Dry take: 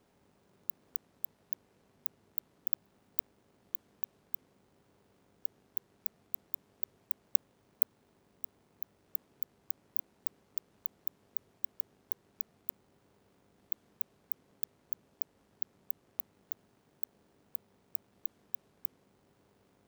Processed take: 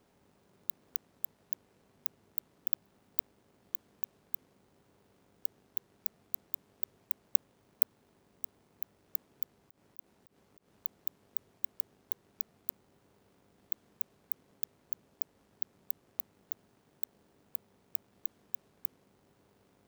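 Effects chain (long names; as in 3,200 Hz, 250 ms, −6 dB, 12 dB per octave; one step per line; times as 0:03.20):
floating-point word with a short mantissa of 2 bits
0:09.57–0:10.72: volume swells 116 ms
level +1 dB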